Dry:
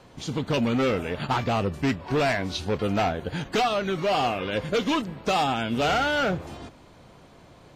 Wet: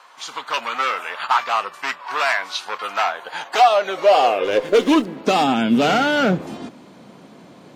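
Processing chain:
high-pass filter sweep 1,100 Hz → 210 Hz, 0:03.04–0:05.60
0:04.44–0:05.21: windowed peak hold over 3 samples
level +5 dB

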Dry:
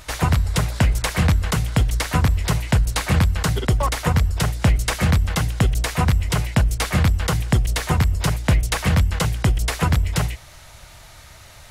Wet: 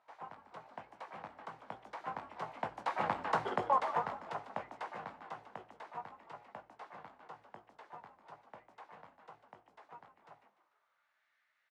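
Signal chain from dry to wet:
source passing by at 0:03.39, 12 m/s, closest 4.3 metres
high-pass filter 170 Hz 12 dB per octave
high-shelf EQ 8,100 Hz −10.5 dB
echo with shifted repeats 148 ms, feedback 41%, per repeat +92 Hz, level −12 dB
band-pass filter sweep 850 Hz → 1,800 Hz, 0:10.44–0:11.27
double-tracking delay 19 ms −8.5 dB
level +1 dB

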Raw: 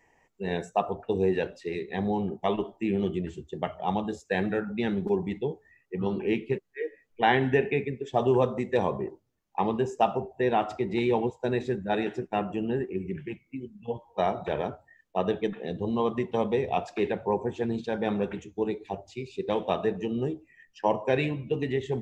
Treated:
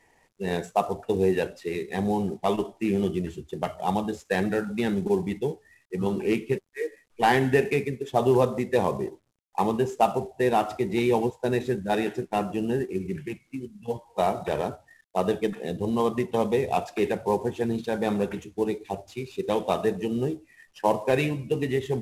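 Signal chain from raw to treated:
variable-slope delta modulation 64 kbit/s
level +2.5 dB

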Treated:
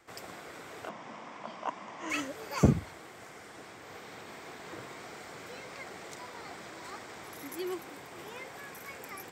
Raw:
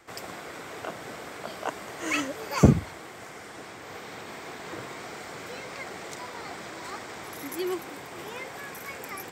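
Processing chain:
0:00.89–0:02.10: loudspeaker in its box 150–6,000 Hz, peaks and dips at 220 Hz +6 dB, 420 Hz −8 dB, 1,000 Hz +9 dB, 1,500 Hz −5 dB, 4,200 Hz −9 dB
level −6 dB

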